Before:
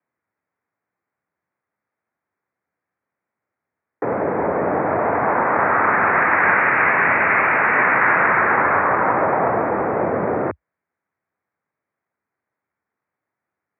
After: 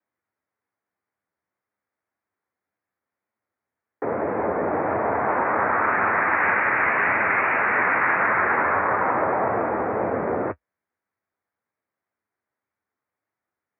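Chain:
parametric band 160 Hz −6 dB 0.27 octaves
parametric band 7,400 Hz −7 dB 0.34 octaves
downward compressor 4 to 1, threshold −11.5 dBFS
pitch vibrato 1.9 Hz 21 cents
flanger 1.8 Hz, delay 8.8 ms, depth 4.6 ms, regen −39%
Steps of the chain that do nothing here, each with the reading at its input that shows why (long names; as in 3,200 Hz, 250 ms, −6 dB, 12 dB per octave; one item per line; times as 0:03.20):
parametric band 7,400 Hz: nothing at its input above 2,900 Hz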